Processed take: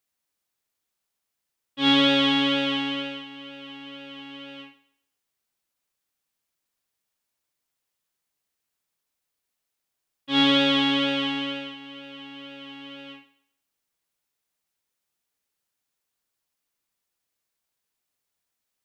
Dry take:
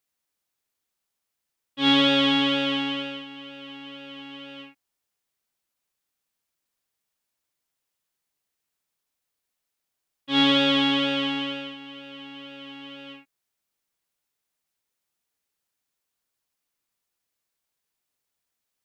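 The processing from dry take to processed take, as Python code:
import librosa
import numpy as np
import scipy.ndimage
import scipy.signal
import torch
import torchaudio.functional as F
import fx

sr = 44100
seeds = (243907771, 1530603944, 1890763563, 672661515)

y = fx.echo_thinned(x, sr, ms=133, feedback_pct=28, hz=180.0, wet_db=-17.0)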